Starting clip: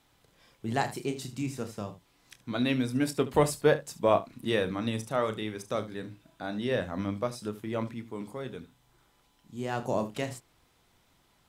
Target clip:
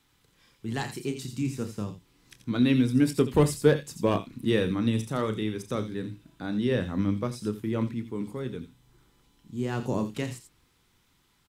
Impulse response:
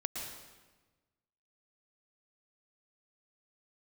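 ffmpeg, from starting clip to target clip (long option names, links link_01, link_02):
-filter_complex "[0:a]equalizer=frequency=650:width_type=o:width=0.66:gain=-11,acrossover=split=630|2200[link_01][link_02][link_03];[link_01]dynaudnorm=framelen=160:gausssize=17:maxgain=7dB[link_04];[link_02]aeval=exprs='0.0398*(abs(mod(val(0)/0.0398+3,4)-2)-1)':channel_layout=same[link_05];[link_03]aecho=1:1:86:0.447[link_06];[link_04][link_05][link_06]amix=inputs=3:normalize=0"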